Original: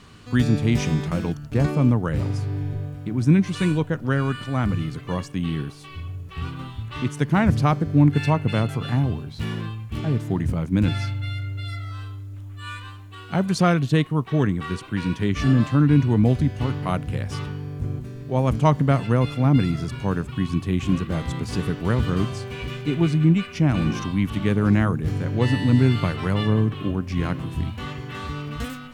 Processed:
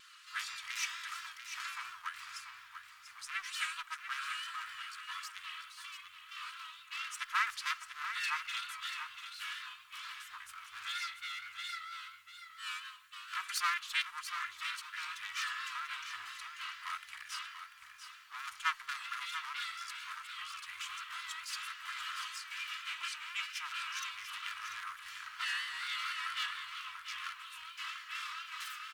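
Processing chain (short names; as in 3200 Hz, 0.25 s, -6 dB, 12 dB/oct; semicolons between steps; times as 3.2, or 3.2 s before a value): minimum comb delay 3 ms; elliptic high-pass 1200 Hz, stop band 50 dB; vibrato 4.3 Hz 57 cents; echo 0.691 s -9 dB; gain -3 dB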